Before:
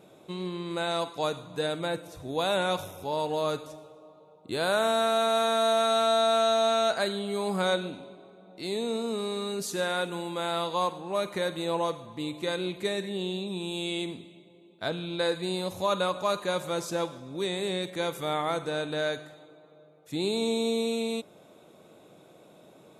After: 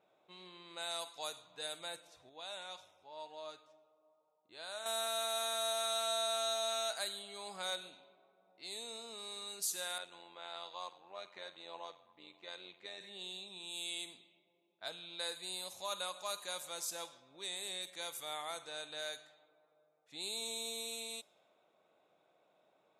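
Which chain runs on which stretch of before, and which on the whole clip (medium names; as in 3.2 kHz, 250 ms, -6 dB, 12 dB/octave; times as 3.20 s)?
2.29–4.86 s: low-pass 10 kHz + feedback comb 310 Hz, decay 0.23 s
7.22–8.71 s: treble shelf 9.5 kHz -6 dB + hard clipper -17.5 dBFS
9.98–13.01 s: Bessel high-pass 160 Hz + AM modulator 90 Hz, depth 55% + distance through air 86 m
whole clip: pre-emphasis filter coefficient 0.97; level-controlled noise filter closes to 1.7 kHz, open at -39 dBFS; peaking EQ 720 Hz +6 dB 0.89 oct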